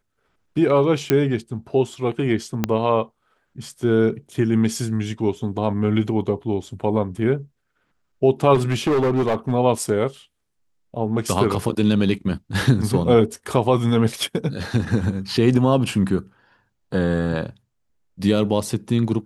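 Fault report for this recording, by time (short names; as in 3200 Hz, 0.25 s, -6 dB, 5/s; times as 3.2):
1.1 pop -4 dBFS
2.64 pop -6 dBFS
8.54–9.52 clipped -15.5 dBFS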